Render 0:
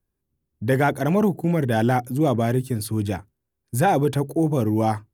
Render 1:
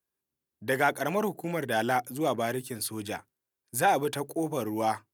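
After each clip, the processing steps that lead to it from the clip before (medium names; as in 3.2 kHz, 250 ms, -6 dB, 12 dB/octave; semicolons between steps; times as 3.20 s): high-pass 920 Hz 6 dB/octave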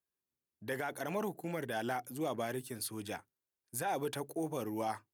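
peak limiter -20 dBFS, peak gain reduction 9 dB; trim -6.5 dB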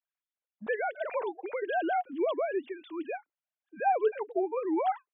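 formants replaced by sine waves; trim +7 dB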